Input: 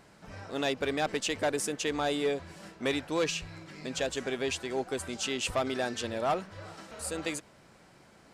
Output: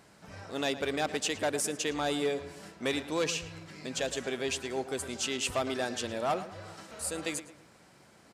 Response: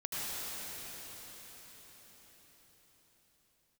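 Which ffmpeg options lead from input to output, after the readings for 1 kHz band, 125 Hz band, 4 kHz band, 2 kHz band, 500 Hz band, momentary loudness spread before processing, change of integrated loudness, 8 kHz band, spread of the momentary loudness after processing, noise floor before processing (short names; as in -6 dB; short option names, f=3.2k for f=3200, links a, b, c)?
-1.0 dB, -1.5 dB, 0.0 dB, -0.5 dB, -1.0 dB, 12 LU, -0.5 dB, +2.0 dB, 13 LU, -58 dBFS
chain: -filter_complex "[0:a]highpass=56,highshelf=f=5.6k:g=5.5,asplit=2[a][b];[b]adelay=110,lowpass=f=3.3k:p=1,volume=-13dB,asplit=2[c][d];[d]adelay=110,lowpass=f=3.3k:p=1,volume=0.42,asplit=2[e][f];[f]adelay=110,lowpass=f=3.3k:p=1,volume=0.42,asplit=2[g][h];[h]adelay=110,lowpass=f=3.3k:p=1,volume=0.42[i];[a][c][e][g][i]amix=inputs=5:normalize=0,aresample=32000,aresample=44100,volume=-1.5dB"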